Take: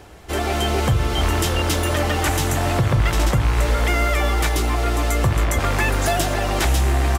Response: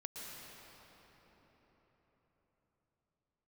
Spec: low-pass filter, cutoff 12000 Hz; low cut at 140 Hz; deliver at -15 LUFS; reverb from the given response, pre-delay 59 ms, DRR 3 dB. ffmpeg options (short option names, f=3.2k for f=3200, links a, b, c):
-filter_complex "[0:a]highpass=140,lowpass=12k,asplit=2[a][b];[1:a]atrim=start_sample=2205,adelay=59[c];[b][c]afir=irnorm=-1:irlink=0,volume=-1.5dB[d];[a][d]amix=inputs=2:normalize=0,volume=5.5dB"